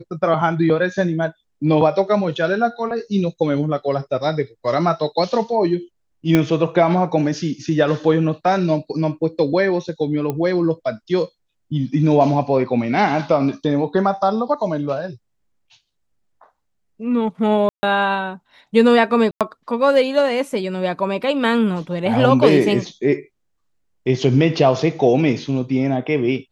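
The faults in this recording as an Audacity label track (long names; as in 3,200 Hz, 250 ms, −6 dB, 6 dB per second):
6.350000	6.350000	click −3 dBFS
10.300000	10.300000	click −11 dBFS
17.690000	17.830000	drop-out 140 ms
19.310000	19.410000	drop-out 97 ms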